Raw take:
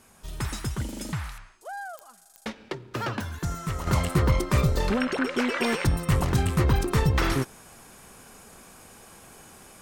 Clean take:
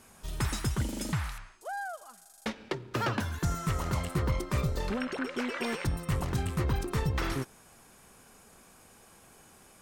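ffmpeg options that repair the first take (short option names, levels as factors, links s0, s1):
-af "adeclick=t=4,asetnsamples=n=441:p=0,asendcmd='3.87 volume volume -7.5dB',volume=1"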